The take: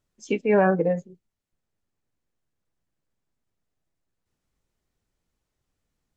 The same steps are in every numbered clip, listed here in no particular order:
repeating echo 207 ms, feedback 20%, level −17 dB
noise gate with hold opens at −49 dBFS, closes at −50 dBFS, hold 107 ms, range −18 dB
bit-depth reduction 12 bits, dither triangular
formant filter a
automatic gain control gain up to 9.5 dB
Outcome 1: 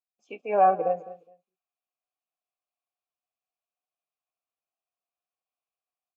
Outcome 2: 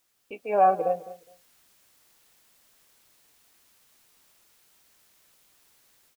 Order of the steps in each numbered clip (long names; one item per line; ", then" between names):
bit-depth reduction, then noise gate with hold, then formant filter, then automatic gain control, then repeating echo
formant filter, then noise gate with hold, then bit-depth reduction, then automatic gain control, then repeating echo